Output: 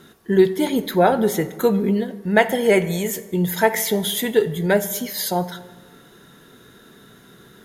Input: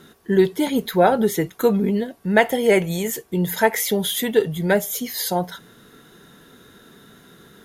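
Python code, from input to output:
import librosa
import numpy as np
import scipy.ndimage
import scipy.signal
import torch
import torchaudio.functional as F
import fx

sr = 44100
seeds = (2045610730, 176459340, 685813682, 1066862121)

y = fx.rev_fdn(x, sr, rt60_s=1.4, lf_ratio=1.05, hf_ratio=0.6, size_ms=48.0, drr_db=12.0)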